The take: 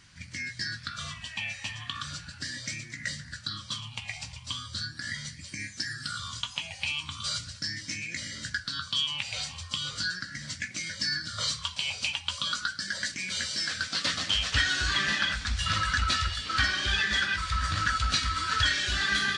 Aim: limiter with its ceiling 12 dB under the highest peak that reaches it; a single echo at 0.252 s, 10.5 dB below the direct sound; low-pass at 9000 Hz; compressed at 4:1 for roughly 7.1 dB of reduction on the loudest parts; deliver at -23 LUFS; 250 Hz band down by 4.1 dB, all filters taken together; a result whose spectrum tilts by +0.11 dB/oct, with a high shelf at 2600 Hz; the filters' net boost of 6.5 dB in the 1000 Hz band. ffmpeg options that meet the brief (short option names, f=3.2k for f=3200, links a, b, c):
-af "lowpass=9k,equalizer=f=250:t=o:g=-6.5,equalizer=f=1k:t=o:g=7.5,highshelf=f=2.6k:g=8.5,acompressor=threshold=-25dB:ratio=4,alimiter=limit=-20.5dB:level=0:latency=1,aecho=1:1:252:0.299,volume=6.5dB"